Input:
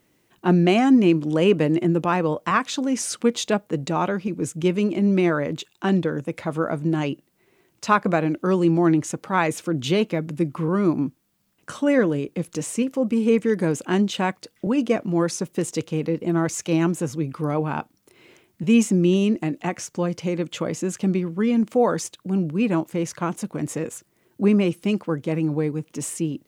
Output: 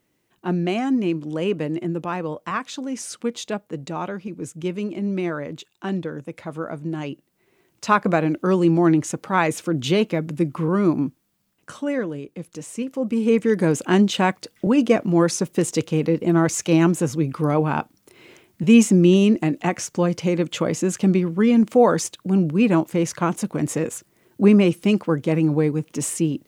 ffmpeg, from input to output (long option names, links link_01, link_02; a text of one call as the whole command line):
ffmpeg -i in.wav -af "volume=12.5dB,afade=type=in:start_time=6.99:duration=1.1:silence=0.446684,afade=type=out:start_time=10.94:duration=1.11:silence=0.375837,afade=type=in:start_time=12.67:duration=1.16:silence=0.281838" out.wav